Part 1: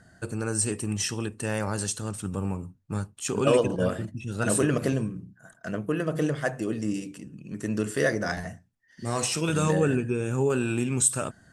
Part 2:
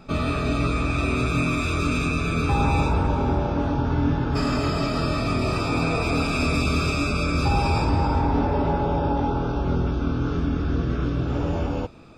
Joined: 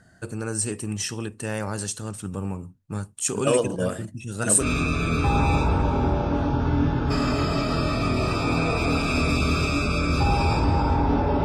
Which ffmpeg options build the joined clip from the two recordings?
-filter_complex "[0:a]asettb=1/sr,asplit=3[a][b][c];[a]atrim=end=3.034[d];[b]atrim=start=3.03:end=4.66,asetpts=PTS-STARTPTS,afade=t=in:d=0.004:c=qsin,afade=t=out:st=1.626:d=0.004:c=qsin,equalizer=f=8.8k:t=o:w=1:g=10[e];[c]atrim=start=4.656[f];[d][e]acrossfade=d=0.004:c1=hsin:c2=qsin[g];[g][f]acrossfade=d=0.004:c1=qsin:c2=hsin,apad=whole_dur=11.44,atrim=end=11.44,atrim=end=4.66,asetpts=PTS-STARTPTS[h];[1:a]atrim=start=1.83:end=8.69,asetpts=PTS-STARTPTS[i];[h][i]acrossfade=d=0.08:c1=tri:c2=tri"

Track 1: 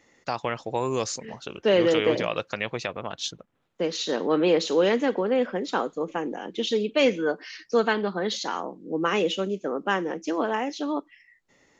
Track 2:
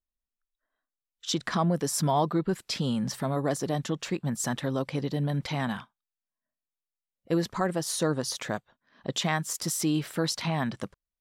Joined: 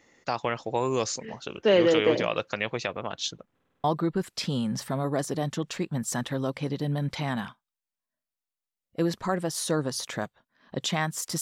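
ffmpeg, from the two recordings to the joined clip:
-filter_complex "[0:a]apad=whole_dur=11.41,atrim=end=11.41,asplit=6[a][b][c][d][e][f];[a]atrim=end=3.592[g];[b]atrim=start=3.538:end=3.592[h];[c]atrim=start=3.538:end=3.592[i];[d]atrim=start=3.538:end=3.592[j];[e]atrim=start=3.538:end=3.592[k];[f]atrim=start=3.538:end=3.592[l];[1:a]atrim=start=2.158:end=9.73[m];[g][h]acrossfade=d=0.004:c1=hsin:c2=hsin[n];[n][i]acrossfade=d=0.004:c1=hsin:c2=hsin[o];[o][j]acrossfade=d=0.004:c1=hsin:c2=hsin[p];[p][k]acrossfade=d=0.004:c1=hsin:c2=hsin[q];[q][l]acrossfade=d=0.004:c1=hsin:c2=hsin[r];[r][m]acrossfade=d=0.004:c1=hsin:c2=hsin"

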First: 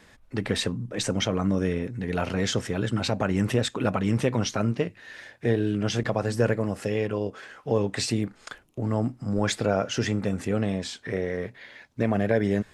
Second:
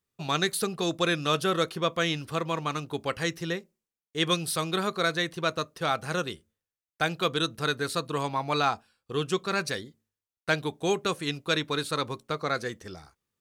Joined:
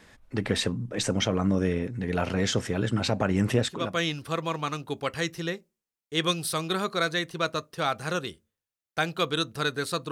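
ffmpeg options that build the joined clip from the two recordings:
-filter_complex "[0:a]apad=whole_dur=10.11,atrim=end=10.11,atrim=end=4.01,asetpts=PTS-STARTPTS[a];[1:a]atrim=start=1.62:end=8.14,asetpts=PTS-STARTPTS[b];[a][b]acrossfade=d=0.42:c1=tri:c2=tri"

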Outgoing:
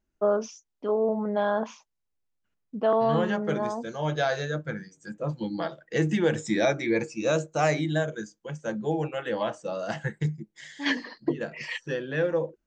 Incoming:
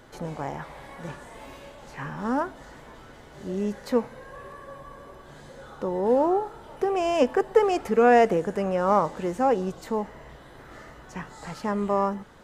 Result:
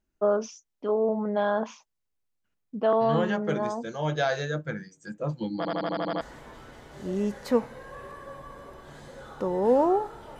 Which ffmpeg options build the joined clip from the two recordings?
-filter_complex "[0:a]apad=whole_dur=10.39,atrim=end=10.39,asplit=8[a][b][c][d][e][f][g][h];[a]atrim=end=5.652[i];[b]atrim=start=5.568:end=5.652[j];[c]atrim=start=5.568:end=5.652[k];[d]atrim=start=5.568:end=5.652[l];[e]atrim=start=5.568:end=5.652[m];[f]atrim=start=5.568:end=5.652[n];[g]atrim=start=5.568:end=5.652[o];[h]atrim=start=5.568:end=5.652[p];[1:a]atrim=start=2.618:end=6.8[q];[i][j]acrossfade=d=0.004:c1=hsin:c2=hsin[r];[r][k]acrossfade=d=0.004:c1=hsin:c2=hsin[s];[s][l]acrossfade=d=0.004:c1=hsin:c2=hsin[t];[t][m]acrossfade=d=0.004:c1=hsin:c2=hsin[u];[u][n]acrossfade=d=0.004:c1=hsin:c2=hsin[v];[v][o]acrossfade=d=0.004:c1=hsin:c2=hsin[w];[w][p]acrossfade=d=0.004:c1=hsin:c2=hsin[x];[x][q]acrossfade=d=0.004:c1=hsin:c2=hsin"

